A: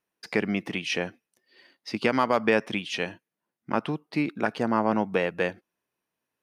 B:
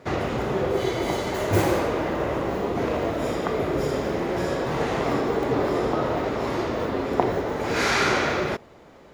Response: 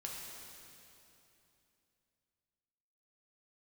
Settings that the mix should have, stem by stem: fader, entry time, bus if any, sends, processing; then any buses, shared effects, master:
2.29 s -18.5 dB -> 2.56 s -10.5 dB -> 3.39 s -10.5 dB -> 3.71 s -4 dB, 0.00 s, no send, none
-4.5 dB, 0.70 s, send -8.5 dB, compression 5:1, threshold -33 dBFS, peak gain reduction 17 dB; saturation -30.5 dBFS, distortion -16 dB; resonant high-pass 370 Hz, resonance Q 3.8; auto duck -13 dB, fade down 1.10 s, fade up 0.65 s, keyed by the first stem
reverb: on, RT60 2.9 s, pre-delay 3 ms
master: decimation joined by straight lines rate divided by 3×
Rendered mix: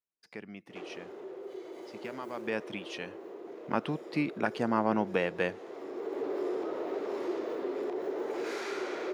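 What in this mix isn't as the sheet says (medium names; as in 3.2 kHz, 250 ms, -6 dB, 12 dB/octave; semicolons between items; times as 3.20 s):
stem B: send -8.5 dB -> -16 dB; master: missing decimation joined by straight lines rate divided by 3×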